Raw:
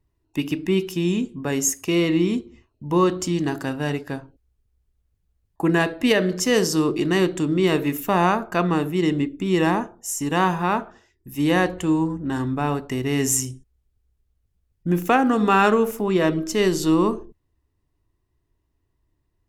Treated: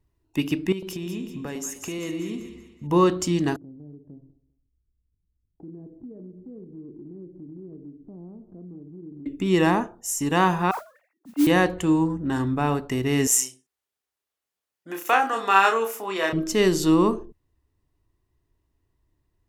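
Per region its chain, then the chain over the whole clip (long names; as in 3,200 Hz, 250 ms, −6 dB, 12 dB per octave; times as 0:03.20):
0:00.72–0:02.87: downward compressor 5 to 1, threshold −30 dBFS + echo with a time of its own for lows and highs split 970 Hz, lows 103 ms, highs 191 ms, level −8.5 dB + one half of a high-frequency compander decoder only
0:03.56–0:09.26: transistor ladder low-pass 410 Hz, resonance 25% + downward compressor 2.5 to 1, threshold −46 dBFS + repeating echo 199 ms, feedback 24%, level −18 dB
0:10.71–0:11.47: three sine waves on the formant tracks + low-pass filter 1,800 Hz + noise that follows the level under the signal 17 dB
0:13.27–0:16.33: high-pass filter 700 Hz + double-tracking delay 31 ms −4.5 dB
whole clip: no processing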